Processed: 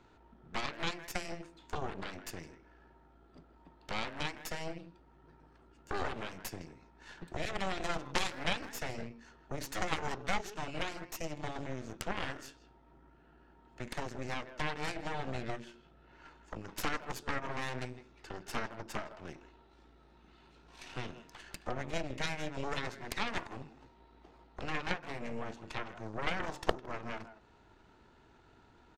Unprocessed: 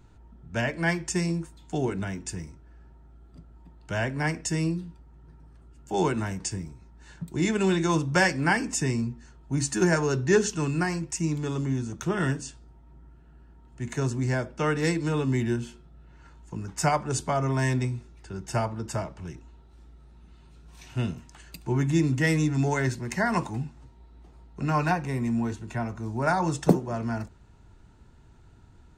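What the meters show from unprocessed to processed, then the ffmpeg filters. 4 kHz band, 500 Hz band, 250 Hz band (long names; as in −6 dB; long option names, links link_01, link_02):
−3.5 dB, −12.5 dB, −17.0 dB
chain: -filter_complex "[0:a]acrossover=split=270 5400:gain=0.178 1 0.126[link_01][link_02][link_03];[link_01][link_02][link_03]amix=inputs=3:normalize=0,acompressor=threshold=-46dB:ratio=2.5,asplit=2[link_04][link_05];[link_05]adelay=160,highpass=300,lowpass=3400,asoftclip=type=hard:threshold=-36dB,volume=-11dB[link_06];[link_04][link_06]amix=inputs=2:normalize=0,aeval=exprs='0.0473*(cos(1*acos(clip(val(0)/0.0473,-1,1)))-cos(1*PI/2))+0.0211*(cos(3*acos(clip(val(0)/0.0473,-1,1)))-cos(3*PI/2))+0.0119*(cos(4*acos(clip(val(0)/0.0473,-1,1)))-cos(4*PI/2))':channel_layout=same,volume=10.5dB"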